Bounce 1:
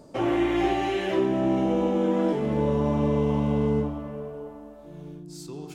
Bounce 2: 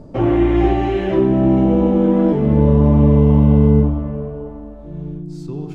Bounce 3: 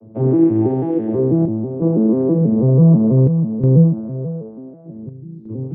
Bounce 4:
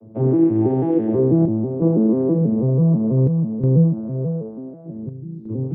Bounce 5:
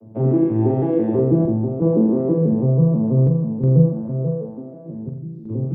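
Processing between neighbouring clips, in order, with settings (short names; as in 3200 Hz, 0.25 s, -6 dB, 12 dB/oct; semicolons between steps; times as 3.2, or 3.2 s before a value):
RIAA curve playback; gain +4 dB
arpeggiated vocoder minor triad, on A2, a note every 0.163 s; band-pass 300 Hz, Q 0.58; chopper 0.55 Hz, depth 60%, duty 80%; gain +4 dB
vocal rider within 4 dB 0.5 s; gain -2.5 dB
flutter echo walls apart 7.6 m, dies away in 0.49 s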